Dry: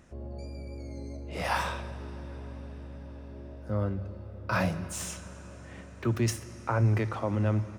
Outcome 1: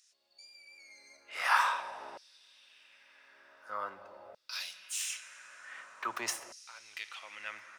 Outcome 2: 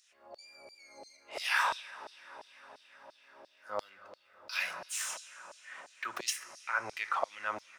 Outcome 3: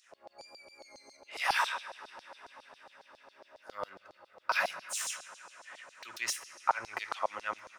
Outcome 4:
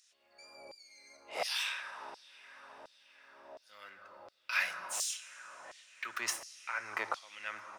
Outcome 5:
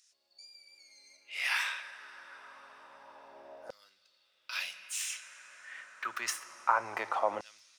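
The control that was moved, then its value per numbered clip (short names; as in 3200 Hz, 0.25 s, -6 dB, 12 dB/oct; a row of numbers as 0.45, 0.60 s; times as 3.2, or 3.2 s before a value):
LFO high-pass, rate: 0.46, 2.9, 7.3, 1.4, 0.27 Hz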